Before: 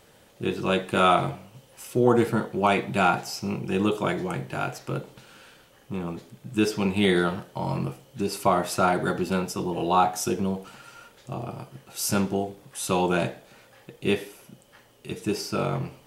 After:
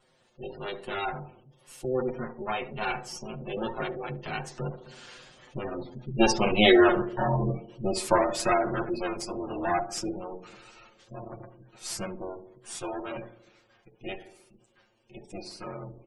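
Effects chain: minimum comb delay 8.3 ms; Doppler pass-by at 6.74, 21 m/s, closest 16 m; LPF 9100 Hz 12 dB/oct; spectral gate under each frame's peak -20 dB strong; high shelf 5100 Hz +7 dB; notches 60/120/180 Hz; comb 5.6 ms, depth 34%; in parallel at -1.5 dB: compressor, threshold -47 dBFS, peak gain reduction 24.5 dB; on the sum: wow and flutter 29 cents; on a send: narrowing echo 70 ms, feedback 64%, band-pass 340 Hz, level -11.5 dB; on the sum: gain +5 dB

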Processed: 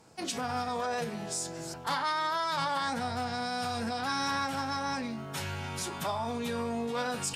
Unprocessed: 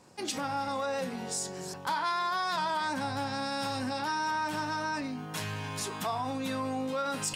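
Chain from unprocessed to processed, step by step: formant-preserving pitch shift -2 st

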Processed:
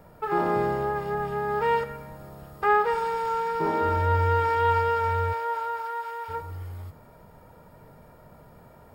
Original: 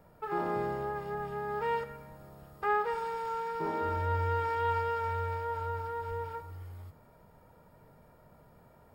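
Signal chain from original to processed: 5.32–6.28 HPF 460 Hz -> 960 Hz 12 dB/oct; gain +8 dB

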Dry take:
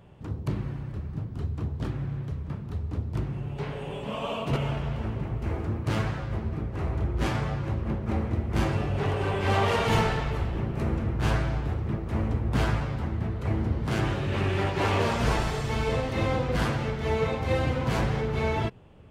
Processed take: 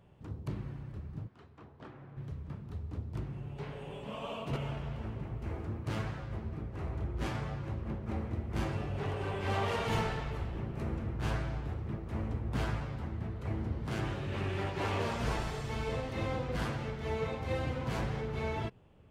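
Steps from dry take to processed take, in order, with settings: 1.27–2.16 band-pass 1900 Hz -> 760 Hz, Q 0.61; gain -8.5 dB

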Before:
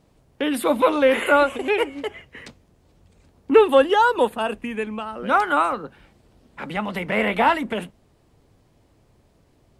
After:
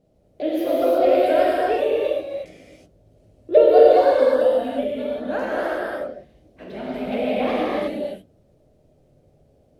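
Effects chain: repeated pitch sweeps +5.5 st, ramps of 0.21 s; resonant low shelf 780 Hz +8 dB, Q 3; non-linear reverb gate 0.39 s flat, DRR -6.5 dB; gain -14 dB

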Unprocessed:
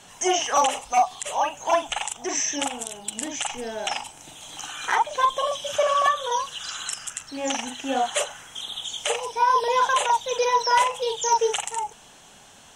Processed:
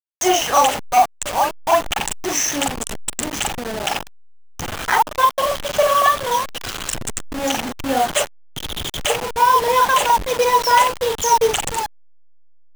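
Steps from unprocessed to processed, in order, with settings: level-crossing sampler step -26 dBFS; gain +6 dB

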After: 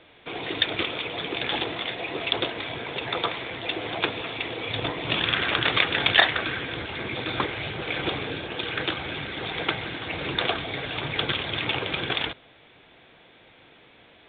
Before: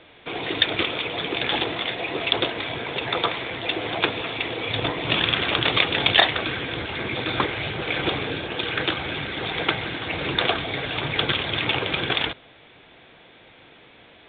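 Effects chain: 5.24–6.86 dynamic EQ 1600 Hz, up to +6 dB, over -34 dBFS, Q 1.8; gain -3.5 dB

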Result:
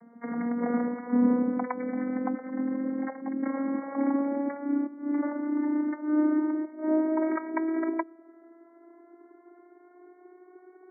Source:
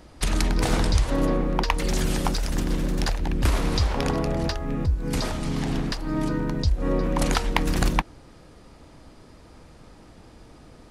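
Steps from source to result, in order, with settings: vocoder on a gliding note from A#3, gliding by +8 st; brick-wall FIR low-pass 2300 Hz

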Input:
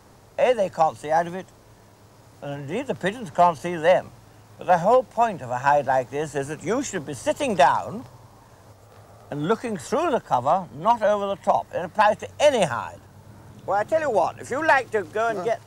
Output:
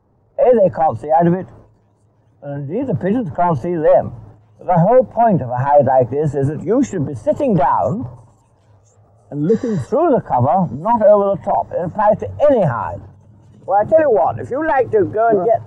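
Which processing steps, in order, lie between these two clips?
one-sided fold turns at -14 dBFS; transient shaper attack -2 dB, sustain +11 dB; 1.25–2.57 dynamic EQ 1600 Hz, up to +5 dB, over -47 dBFS, Q 1.3; 9.51–9.79 spectral repair 630–7400 Hz after; high shelf 2100 Hz -12 dB; on a send: thin delay 1.011 s, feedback 75%, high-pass 5200 Hz, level -11 dB; on the sum: maximiser +14 dB; spectral expander 1.5:1; gain -1 dB

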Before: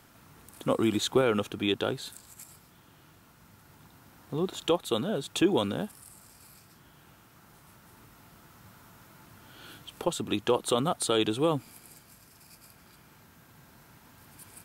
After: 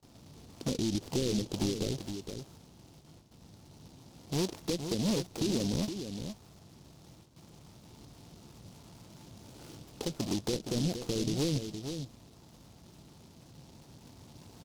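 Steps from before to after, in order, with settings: half-waves squared off; gate with hold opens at -47 dBFS; treble ducked by the level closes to 400 Hz, closed at -19 dBFS; LPF 1000 Hz 12 dB/oct; limiter -22 dBFS, peak gain reduction 9 dB; on a send: echo 0.466 s -8 dB; on the sum: noise-modulated delay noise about 4400 Hz, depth 0.16 ms; gain -2.5 dB

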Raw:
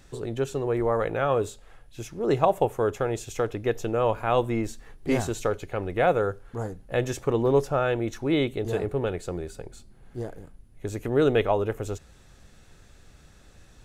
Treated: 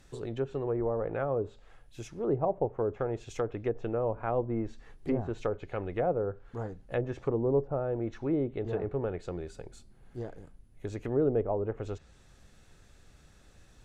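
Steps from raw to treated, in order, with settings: treble ducked by the level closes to 660 Hz, closed at -20 dBFS; gain -5 dB

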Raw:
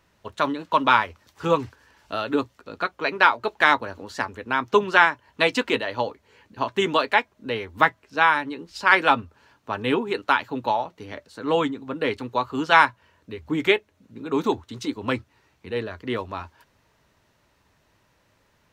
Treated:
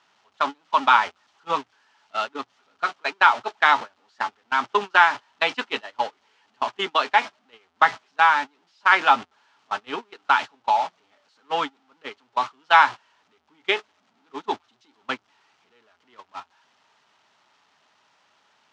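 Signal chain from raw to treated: zero-crossing step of -25 dBFS; speaker cabinet 320–6200 Hz, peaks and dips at 330 Hz -6 dB, 510 Hz -8 dB, 820 Hz +6 dB, 1300 Hz +5 dB, 3100 Hz +4 dB; gate -21 dBFS, range -29 dB; gain -3 dB

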